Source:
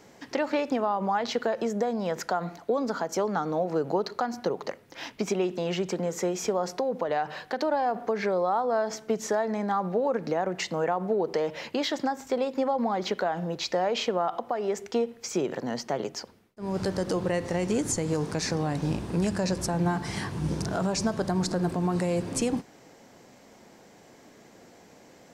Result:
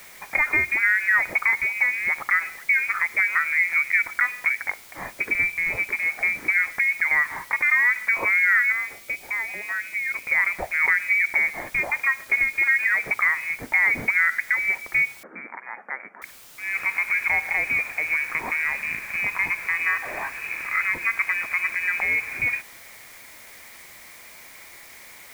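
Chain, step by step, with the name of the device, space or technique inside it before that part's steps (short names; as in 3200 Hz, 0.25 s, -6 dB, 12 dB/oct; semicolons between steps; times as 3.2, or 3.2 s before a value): scrambled radio voice (BPF 400–2700 Hz; inverted band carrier 2700 Hz; white noise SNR 23 dB); 8.72–10.27 band shelf 1400 Hz -8.5 dB; 15.23–16.22 elliptic band-pass 200–1600 Hz, stop band 40 dB; gain +7.5 dB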